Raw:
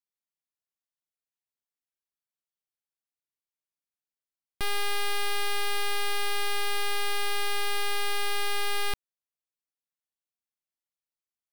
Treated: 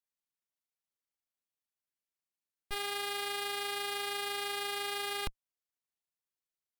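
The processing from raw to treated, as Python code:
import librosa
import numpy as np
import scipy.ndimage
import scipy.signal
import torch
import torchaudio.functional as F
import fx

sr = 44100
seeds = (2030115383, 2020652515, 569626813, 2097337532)

y = fx.tube_stage(x, sr, drive_db=29.0, bias=0.6)
y = fx.stretch_grains(y, sr, factor=0.59, grain_ms=77.0)
y = y * librosa.db_to_amplitude(1.5)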